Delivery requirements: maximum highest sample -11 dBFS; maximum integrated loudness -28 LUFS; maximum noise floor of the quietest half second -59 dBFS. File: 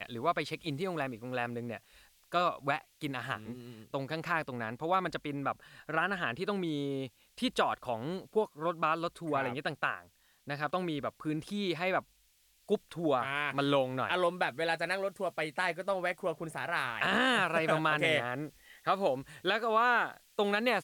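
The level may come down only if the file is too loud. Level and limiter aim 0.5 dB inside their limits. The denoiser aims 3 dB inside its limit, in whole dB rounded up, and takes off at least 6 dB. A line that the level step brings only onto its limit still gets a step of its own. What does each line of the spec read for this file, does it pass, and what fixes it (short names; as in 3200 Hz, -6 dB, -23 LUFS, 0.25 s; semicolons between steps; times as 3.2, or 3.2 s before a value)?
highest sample -16.5 dBFS: OK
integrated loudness -33.0 LUFS: OK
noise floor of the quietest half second -68 dBFS: OK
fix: none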